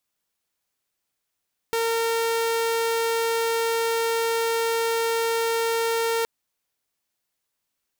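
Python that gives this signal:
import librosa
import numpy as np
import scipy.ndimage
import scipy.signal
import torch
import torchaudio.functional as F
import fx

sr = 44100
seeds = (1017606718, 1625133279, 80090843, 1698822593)

y = 10.0 ** (-19.0 / 20.0) * (2.0 * np.mod(458.0 * (np.arange(round(4.52 * sr)) / sr), 1.0) - 1.0)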